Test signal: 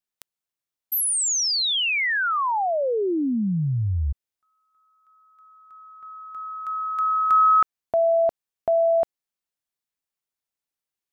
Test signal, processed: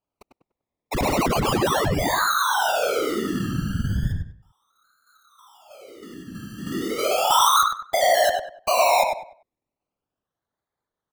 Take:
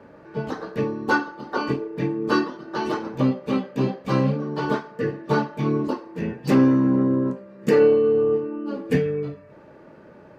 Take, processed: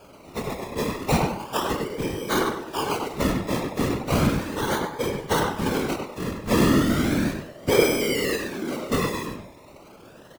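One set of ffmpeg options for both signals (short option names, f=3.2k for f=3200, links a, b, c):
-filter_complex "[0:a]lowshelf=f=78:g=10.5,acrossover=split=450[a][b];[b]acontrast=64[c];[a][c]amix=inputs=2:normalize=0,acrusher=samples=23:mix=1:aa=0.000001:lfo=1:lforange=13.8:lforate=0.35,asplit=2[d][e];[e]adelay=98,lowpass=f=2.8k:p=1,volume=-3.5dB,asplit=2[f][g];[g]adelay=98,lowpass=f=2.8k:p=1,volume=0.29,asplit=2[h][i];[i]adelay=98,lowpass=f=2.8k:p=1,volume=0.29,asplit=2[j][k];[k]adelay=98,lowpass=f=2.8k:p=1,volume=0.29[l];[d][f][h][j][l]amix=inputs=5:normalize=0,afftfilt=real='hypot(re,im)*cos(2*PI*random(0))':imag='hypot(re,im)*sin(2*PI*random(1))':win_size=512:overlap=0.75"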